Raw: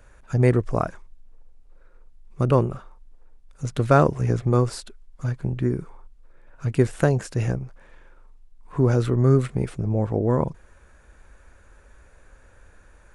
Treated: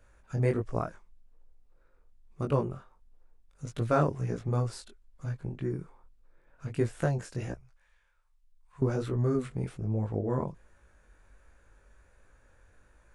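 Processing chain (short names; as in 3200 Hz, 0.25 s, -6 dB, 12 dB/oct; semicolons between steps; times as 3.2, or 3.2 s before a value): chorus 1.3 Hz, delay 17.5 ms, depth 5.2 ms; 7.54–8.82 passive tone stack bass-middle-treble 10-0-10; gain -6 dB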